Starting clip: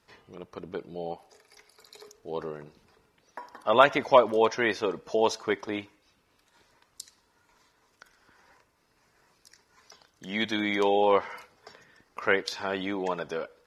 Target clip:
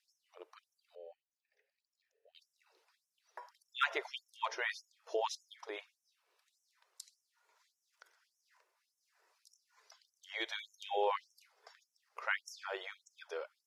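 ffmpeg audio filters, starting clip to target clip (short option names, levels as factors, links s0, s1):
-filter_complex "[0:a]asettb=1/sr,asplit=3[s0][s1][s2];[s0]atrim=end=0.954[s3];[s1]atrim=start=0.95:end=2.35,asetpts=PTS-STARTPTS,afade=t=in:d=0.004:c=qsin,afade=t=out:st=1.396:d=0.004:c=qsin,asplit=3[s4][s5][s6];[s4]bandpass=f=530:t=q:w=8,volume=1[s7];[s5]bandpass=f=1840:t=q:w=8,volume=0.501[s8];[s6]bandpass=f=2480:t=q:w=8,volume=0.355[s9];[s7][s8][s9]amix=inputs=3:normalize=0[s10];[s2]atrim=start=2.346[s11];[s3][s10]acrossfade=d=0.004:c1=hsin:c2=qsin[s12];[s12][s11]acrossfade=d=0.004:c1=qsin:c2=hsin,afftfilt=real='re*gte(b*sr/1024,320*pow(5400/320,0.5+0.5*sin(2*PI*1.7*pts/sr)))':imag='im*gte(b*sr/1024,320*pow(5400/320,0.5+0.5*sin(2*PI*1.7*pts/sr)))':win_size=1024:overlap=0.75,volume=0.376"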